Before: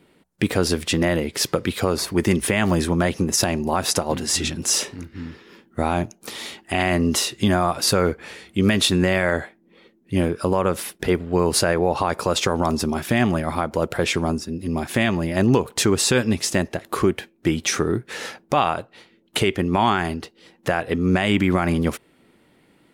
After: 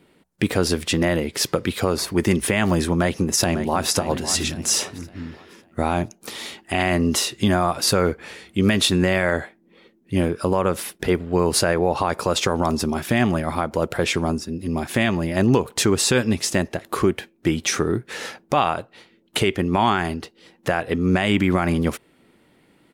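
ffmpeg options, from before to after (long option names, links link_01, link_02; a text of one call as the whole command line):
ffmpeg -i in.wav -filter_complex "[0:a]asplit=2[link_01][link_02];[link_02]afade=type=in:start_time=2.9:duration=0.01,afade=type=out:start_time=3.88:duration=0.01,aecho=0:1:550|1100|1650|2200:0.281838|0.0986434|0.0345252|0.0120838[link_03];[link_01][link_03]amix=inputs=2:normalize=0" out.wav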